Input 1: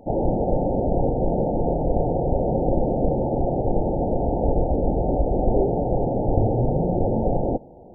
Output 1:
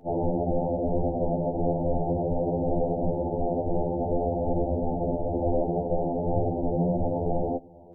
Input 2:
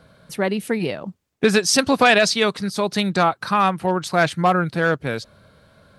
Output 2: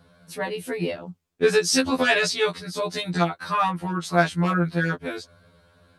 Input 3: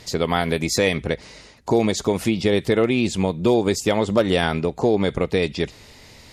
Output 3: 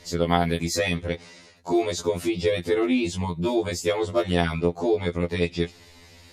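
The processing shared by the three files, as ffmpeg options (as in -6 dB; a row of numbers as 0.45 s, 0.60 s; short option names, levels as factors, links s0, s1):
-af "afftfilt=real='re*2*eq(mod(b,4),0)':imag='im*2*eq(mod(b,4),0)':win_size=2048:overlap=0.75,volume=0.794"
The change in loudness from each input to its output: -4.5 LU, -4.5 LU, -4.0 LU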